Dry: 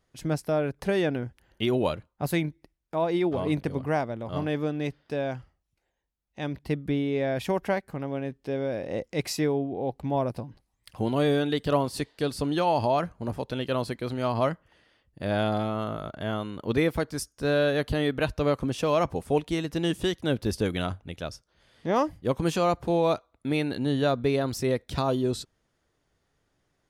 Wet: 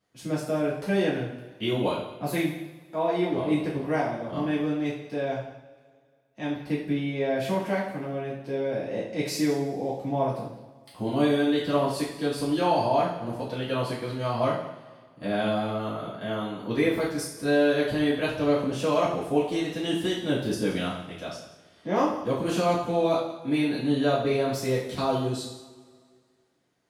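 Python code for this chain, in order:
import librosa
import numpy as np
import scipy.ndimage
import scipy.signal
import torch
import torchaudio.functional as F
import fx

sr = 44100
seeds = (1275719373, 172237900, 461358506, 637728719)

p1 = scipy.signal.sosfilt(scipy.signal.butter(2, 120.0, 'highpass', fs=sr, output='sos'), x)
p2 = p1 + fx.echo_single(p1, sr, ms=176, db=-16.0, dry=0)
p3 = fx.rev_double_slope(p2, sr, seeds[0], early_s=0.54, late_s=2.0, knee_db=-18, drr_db=-8.0)
y = p3 * 10.0 ** (-8.0 / 20.0)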